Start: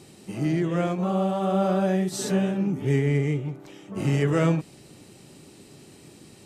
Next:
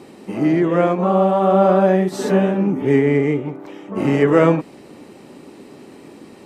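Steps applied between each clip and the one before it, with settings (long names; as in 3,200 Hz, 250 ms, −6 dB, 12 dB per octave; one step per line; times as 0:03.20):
octave-band graphic EQ 125/250/500/1,000/2,000/8,000 Hz −4/+10/+8/+10/+6/−4 dB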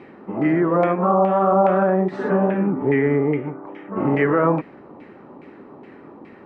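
brickwall limiter −8 dBFS, peak gain reduction 6 dB
auto-filter low-pass saw down 2.4 Hz 900–2,200 Hz
level −2.5 dB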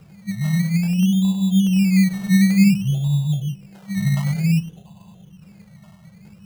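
feedback echo with a high-pass in the loop 98 ms, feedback 78%, high-pass 570 Hz, level −6 dB
brick-wall band-stop 210–2,600 Hz
sample-and-hold swept by an LFO 17×, swing 60% 0.55 Hz
level +8.5 dB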